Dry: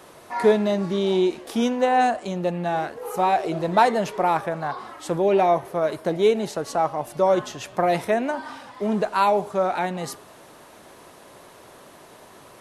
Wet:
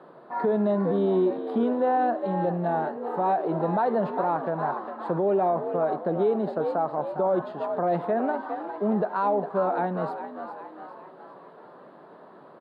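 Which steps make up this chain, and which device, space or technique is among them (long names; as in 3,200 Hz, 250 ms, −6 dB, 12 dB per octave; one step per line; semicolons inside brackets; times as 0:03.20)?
elliptic band-pass filter 160–1,700 Hz, stop band 50 dB
echo with shifted repeats 405 ms, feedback 52%, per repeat +66 Hz, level −11 dB
over-bright horn tweeter (high shelf with overshoot 3,100 Hz +13.5 dB, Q 3; brickwall limiter −16 dBFS, peak gain reduction 8.5 dB)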